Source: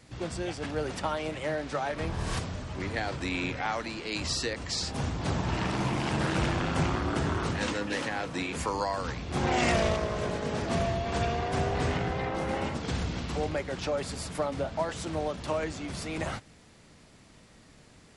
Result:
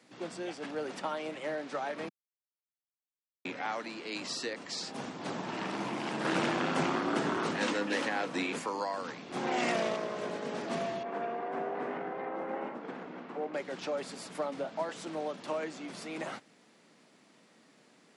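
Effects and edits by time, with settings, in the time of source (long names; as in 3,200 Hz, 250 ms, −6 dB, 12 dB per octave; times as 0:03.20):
0:02.09–0:03.45: silence
0:06.25–0:08.59: clip gain +4.5 dB
0:11.03–0:13.54: three-way crossover with the lows and the highs turned down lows −13 dB, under 210 Hz, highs −22 dB, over 2,100 Hz
whole clip: high-pass filter 200 Hz 24 dB per octave; high-shelf EQ 5,400 Hz −5 dB; level −4 dB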